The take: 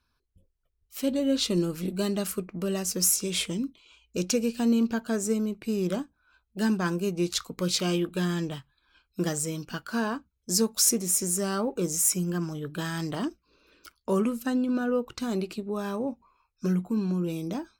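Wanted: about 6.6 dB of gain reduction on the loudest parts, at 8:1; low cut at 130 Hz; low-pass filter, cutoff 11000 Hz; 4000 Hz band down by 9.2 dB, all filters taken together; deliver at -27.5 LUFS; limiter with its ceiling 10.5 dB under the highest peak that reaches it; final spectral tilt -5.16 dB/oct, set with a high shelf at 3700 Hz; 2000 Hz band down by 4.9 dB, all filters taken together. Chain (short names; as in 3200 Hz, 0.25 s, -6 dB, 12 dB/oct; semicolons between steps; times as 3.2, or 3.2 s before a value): HPF 130 Hz; LPF 11000 Hz; bell 2000 Hz -4 dB; high shelf 3700 Hz -4 dB; bell 4000 Hz -8.5 dB; compressor 8:1, threshold -27 dBFS; gain +10.5 dB; limiter -18.5 dBFS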